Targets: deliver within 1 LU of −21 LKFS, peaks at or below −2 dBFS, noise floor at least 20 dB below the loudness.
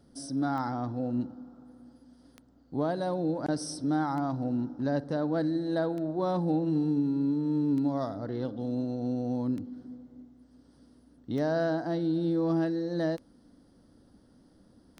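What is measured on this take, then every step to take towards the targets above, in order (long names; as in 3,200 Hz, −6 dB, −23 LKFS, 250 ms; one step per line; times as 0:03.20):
number of clicks 9; integrated loudness −30.5 LKFS; sample peak −18.0 dBFS; target loudness −21.0 LKFS
→ click removal
level +9.5 dB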